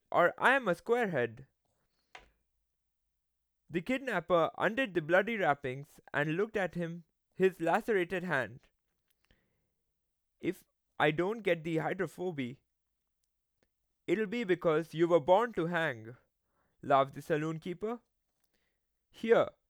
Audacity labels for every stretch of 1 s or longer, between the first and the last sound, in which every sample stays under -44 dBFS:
2.180000	3.710000	silence
8.570000	10.440000	silence
12.530000	14.080000	silence
17.960000	19.180000	silence